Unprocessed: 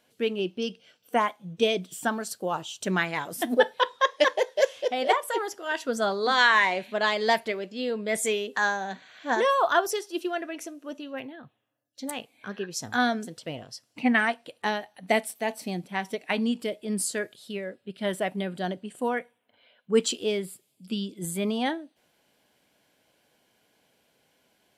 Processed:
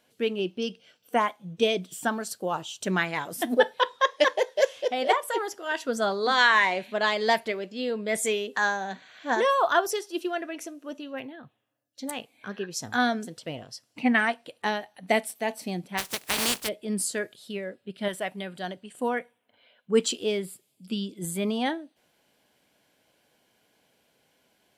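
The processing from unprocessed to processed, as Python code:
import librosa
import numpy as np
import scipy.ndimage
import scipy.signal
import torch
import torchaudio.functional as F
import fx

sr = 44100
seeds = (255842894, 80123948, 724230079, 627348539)

y = fx.spec_flatten(x, sr, power=0.24, at=(15.97, 16.67), fade=0.02)
y = fx.peak_eq(y, sr, hz=250.0, db=-7.0, octaves=2.7, at=(18.08, 18.97))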